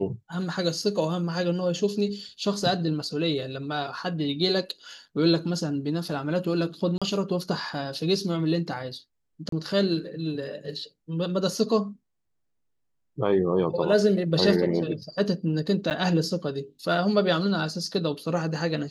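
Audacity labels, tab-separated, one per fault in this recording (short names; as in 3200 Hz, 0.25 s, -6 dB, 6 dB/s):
6.980000	7.020000	gap 36 ms
9.490000	9.520000	gap 33 ms
15.900000	15.910000	gap 9.3 ms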